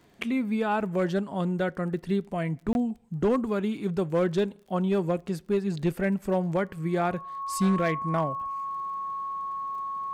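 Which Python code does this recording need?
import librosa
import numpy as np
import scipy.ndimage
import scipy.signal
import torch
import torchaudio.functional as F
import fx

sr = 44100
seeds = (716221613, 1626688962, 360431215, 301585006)

y = fx.fix_declip(x, sr, threshold_db=-18.0)
y = fx.fix_declick_ar(y, sr, threshold=6.5)
y = fx.notch(y, sr, hz=1100.0, q=30.0)
y = fx.fix_interpolate(y, sr, at_s=(2.73,), length_ms=21.0)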